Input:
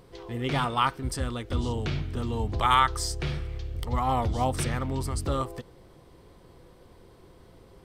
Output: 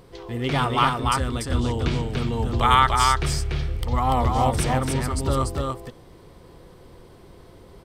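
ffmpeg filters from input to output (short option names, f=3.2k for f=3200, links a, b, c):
-af "aecho=1:1:290:0.708,volume=4dB"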